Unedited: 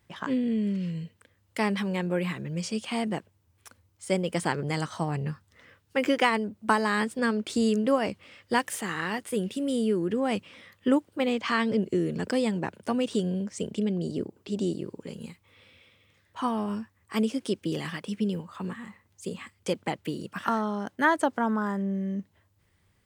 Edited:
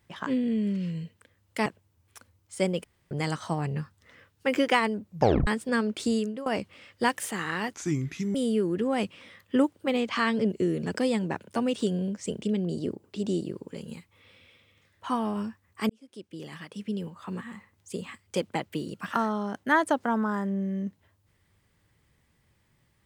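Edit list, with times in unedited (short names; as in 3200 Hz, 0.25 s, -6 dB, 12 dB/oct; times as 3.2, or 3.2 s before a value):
1.66–3.16 cut
4.34–4.61 room tone
6.57 tape stop 0.40 s
7.55–7.96 fade out linear, to -20.5 dB
9.24–9.67 speed 71%
17.22–18.85 fade in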